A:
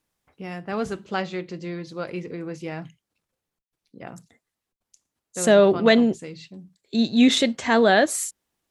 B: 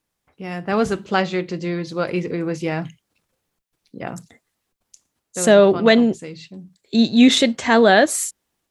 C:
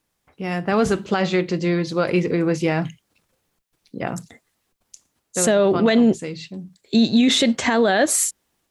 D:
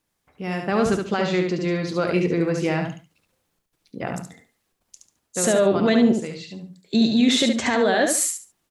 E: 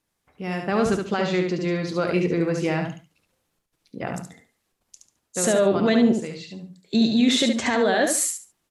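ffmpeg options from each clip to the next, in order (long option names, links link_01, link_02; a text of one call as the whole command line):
ffmpeg -i in.wav -af "dynaudnorm=framelen=360:gausssize=3:maxgain=9dB" out.wav
ffmpeg -i in.wav -af "alimiter=level_in=11.5dB:limit=-1dB:release=50:level=0:latency=1,volume=-7.5dB" out.wav
ffmpeg -i in.wav -af "aecho=1:1:71|142|213:0.562|0.135|0.0324,volume=-3dB" out.wav
ffmpeg -i in.wav -af "volume=-1dB" -ar 32000 -c:a aac -b:a 96k out.aac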